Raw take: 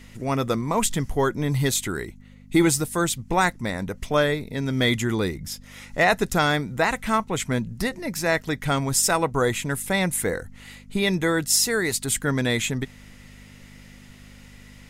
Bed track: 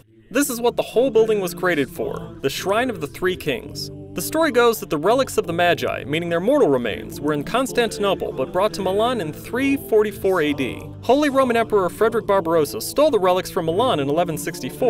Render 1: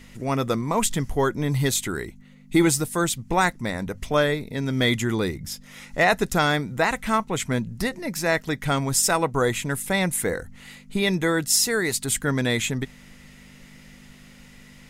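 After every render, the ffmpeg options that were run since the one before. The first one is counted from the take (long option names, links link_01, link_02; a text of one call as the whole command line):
ffmpeg -i in.wav -af "bandreject=frequency=50:width_type=h:width=4,bandreject=frequency=100:width_type=h:width=4" out.wav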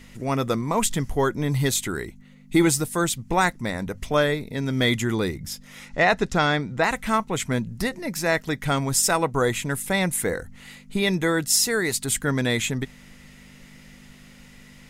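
ffmpeg -i in.wav -filter_complex "[0:a]asplit=3[link_01][link_02][link_03];[link_01]afade=type=out:start_time=5.88:duration=0.02[link_04];[link_02]lowpass=5700,afade=type=in:start_time=5.88:duration=0.02,afade=type=out:start_time=6.82:duration=0.02[link_05];[link_03]afade=type=in:start_time=6.82:duration=0.02[link_06];[link_04][link_05][link_06]amix=inputs=3:normalize=0" out.wav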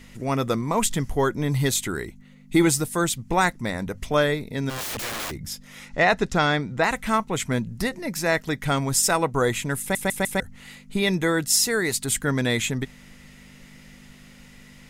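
ffmpeg -i in.wav -filter_complex "[0:a]asplit=3[link_01][link_02][link_03];[link_01]afade=type=out:start_time=4.69:duration=0.02[link_04];[link_02]aeval=exprs='(mod(20*val(0)+1,2)-1)/20':channel_layout=same,afade=type=in:start_time=4.69:duration=0.02,afade=type=out:start_time=5.3:duration=0.02[link_05];[link_03]afade=type=in:start_time=5.3:duration=0.02[link_06];[link_04][link_05][link_06]amix=inputs=3:normalize=0,asplit=5[link_07][link_08][link_09][link_10][link_11];[link_07]atrim=end=9.952[link_12];[link_08]atrim=start=9.798:end=9.952[link_13];[link_09]atrim=start=9.798:end=9.952[link_14];[link_10]atrim=start=9.798:end=9.952[link_15];[link_11]atrim=start=10.398[link_16];[link_12][link_13]acrossfade=duration=0.004:curve1=hsin:curve2=hsin[link_17];[link_17][link_14]acrossfade=duration=0.004:curve1=hsin:curve2=hsin[link_18];[link_18][link_15]acrossfade=duration=0.004:curve1=hsin:curve2=hsin[link_19];[link_19][link_16]acrossfade=duration=0.004:curve1=hsin:curve2=hsin" out.wav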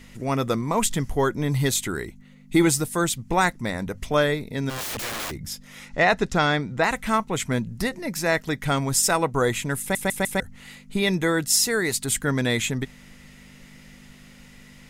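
ffmpeg -i in.wav -af anull out.wav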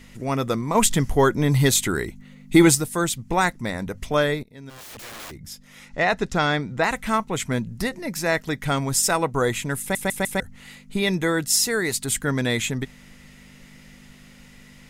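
ffmpeg -i in.wav -filter_complex "[0:a]asplit=4[link_01][link_02][link_03][link_04];[link_01]atrim=end=0.752[link_05];[link_02]atrim=start=0.748:end=2.752,asetpts=PTS-STARTPTS,volume=4.5dB[link_06];[link_03]atrim=start=2.748:end=4.43,asetpts=PTS-STARTPTS,afade=type=out:start_time=1.678:duration=0.004:curve=hsin:silence=0.125893[link_07];[link_04]atrim=start=4.43,asetpts=PTS-STARTPTS,afade=type=in:duration=2.13:silence=0.125893[link_08];[link_05][link_06]acrossfade=duration=0.004:curve1=hsin:curve2=hsin[link_09];[link_07][link_08]concat=n=2:v=0:a=1[link_10];[link_09][link_10]acrossfade=duration=0.004:curve1=hsin:curve2=hsin" out.wav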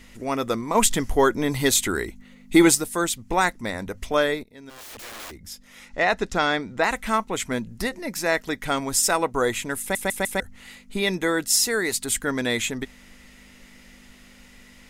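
ffmpeg -i in.wav -af "equalizer=frequency=140:width=2.2:gain=-12.5" out.wav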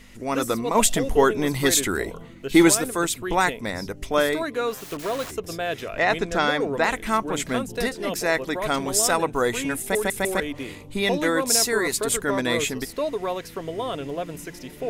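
ffmpeg -i in.wav -i bed.wav -filter_complex "[1:a]volume=-10.5dB[link_01];[0:a][link_01]amix=inputs=2:normalize=0" out.wav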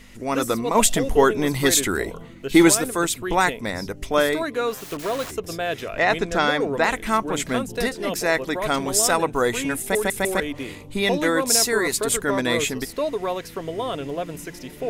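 ffmpeg -i in.wav -af "volume=1.5dB,alimiter=limit=-3dB:level=0:latency=1" out.wav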